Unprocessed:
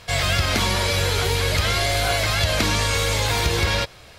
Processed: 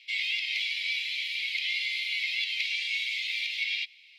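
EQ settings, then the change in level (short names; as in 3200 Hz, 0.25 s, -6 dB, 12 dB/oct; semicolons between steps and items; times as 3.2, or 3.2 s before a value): steep high-pass 2100 Hz 96 dB/oct; air absorption 370 m; +3.0 dB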